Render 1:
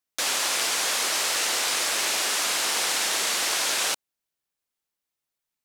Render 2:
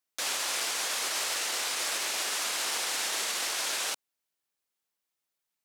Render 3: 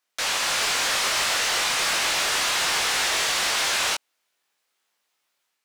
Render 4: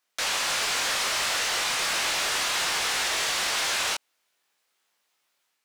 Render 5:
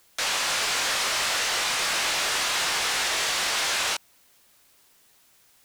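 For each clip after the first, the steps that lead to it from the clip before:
low shelf 170 Hz -7.5 dB; limiter -22 dBFS, peak gain reduction 9 dB
AGC gain up to 3.5 dB; chorus 0.4 Hz, delay 20 ms, depth 2.6 ms; overdrive pedal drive 16 dB, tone 3700 Hz, clips at -18.5 dBFS; gain +5 dB
limiter -21 dBFS, peak gain reduction 5.5 dB; gain +1 dB
added noise white -61 dBFS; gain +1 dB

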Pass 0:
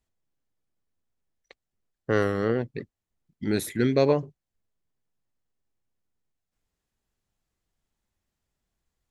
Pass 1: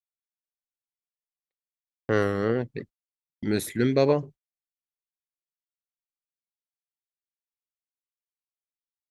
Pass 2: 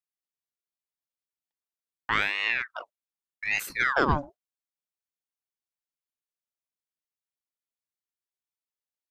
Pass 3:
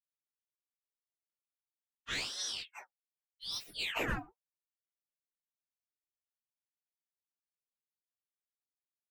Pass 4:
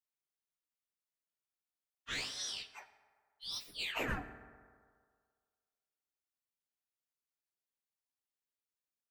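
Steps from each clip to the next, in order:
gate -42 dBFS, range -43 dB
ring modulator with a swept carrier 1400 Hz, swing 70%, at 0.83 Hz
inharmonic rescaling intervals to 130%; gain -6 dB
reverb RT60 1.9 s, pre-delay 4 ms, DRR 10 dB; gain -2.5 dB

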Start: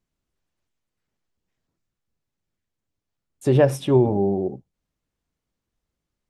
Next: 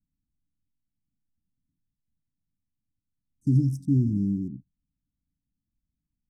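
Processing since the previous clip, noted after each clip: Wiener smoothing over 25 samples; Chebyshev band-stop 290–5300 Hz, order 5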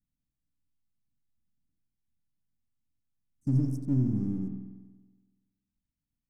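half-wave gain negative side -3 dB; on a send at -5 dB: reverb RT60 1.3 s, pre-delay 47 ms; on the sum: gain -4 dB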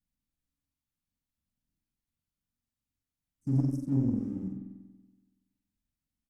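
notches 50/100/150/200/250/300 Hz; loudspeakers at several distances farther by 15 m -5 dB, 31 m -10 dB; added harmonics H 4 -22 dB, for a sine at -13 dBFS; gain -1.5 dB

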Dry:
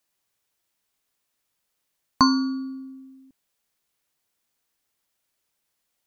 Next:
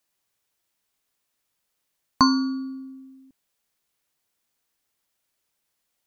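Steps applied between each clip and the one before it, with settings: nothing audible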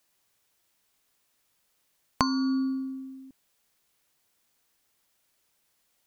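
compressor 16:1, threshold -27 dBFS, peak gain reduction 15.5 dB; gain +5 dB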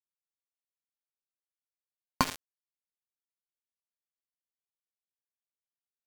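tremolo 1.8 Hz, depth 75%; shoebox room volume 1700 m³, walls mixed, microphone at 0.97 m; sample gate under -23 dBFS; gain -1 dB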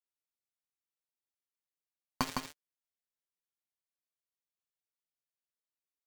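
flange 1.2 Hz, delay 5.5 ms, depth 3.7 ms, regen +28%; echo 0.159 s -4 dB; gain -2 dB

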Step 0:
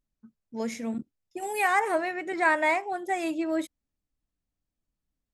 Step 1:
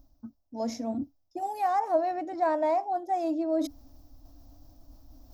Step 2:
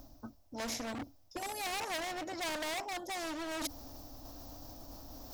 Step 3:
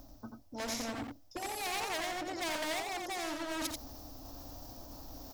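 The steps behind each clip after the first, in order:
EQ curve 110 Hz 0 dB, 180 Hz -20 dB, 280 Hz +5 dB, 410 Hz -13 dB, 660 Hz +4 dB, 2100 Hz -22 dB, 3100 Hz -17 dB, 5500 Hz -3 dB, 9000 Hz -25 dB, 14000 Hz -4 dB; reverse; upward compressor, threshold -24 dBFS; reverse
hard clip -29.5 dBFS, distortion -7 dB; spectral compressor 2:1; gain +6 dB
echo 87 ms -4.5 dB

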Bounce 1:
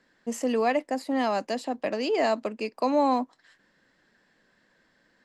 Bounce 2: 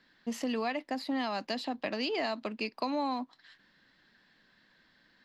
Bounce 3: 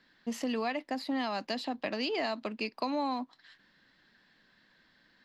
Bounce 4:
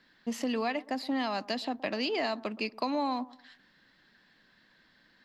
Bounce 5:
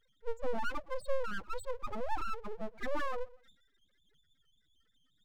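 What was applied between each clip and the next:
ten-band EQ 500 Hz -7 dB, 4000 Hz +9 dB, 8000 Hz -12 dB; compressor, threshold -29 dBFS, peak gain reduction 8 dB
nothing audible
analogue delay 0.12 s, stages 1024, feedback 31%, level -20 dB; gain +1.5 dB
pre-echo 37 ms -20 dB; loudest bins only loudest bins 2; full-wave rectifier; gain +4 dB

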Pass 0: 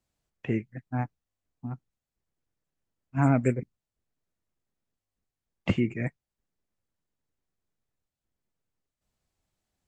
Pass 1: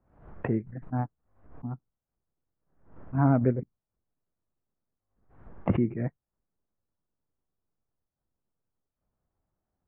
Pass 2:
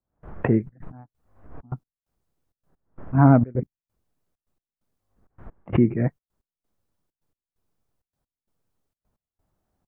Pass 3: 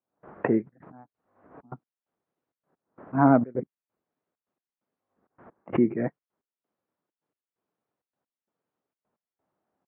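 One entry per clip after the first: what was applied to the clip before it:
LPF 1400 Hz 24 dB/oct; backwards sustainer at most 100 dB/s
step gate "..xxxx.x" 131 bpm -24 dB; gain +8 dB
BPF 260–2200 Hz

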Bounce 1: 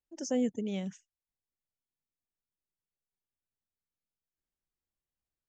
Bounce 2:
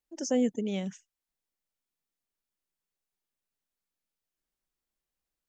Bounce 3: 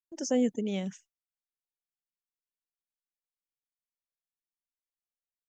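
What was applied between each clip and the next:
bell 95 Hz -13 dB 0.77 oct; gain +4 dB
gate with hold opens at -49 dBFS

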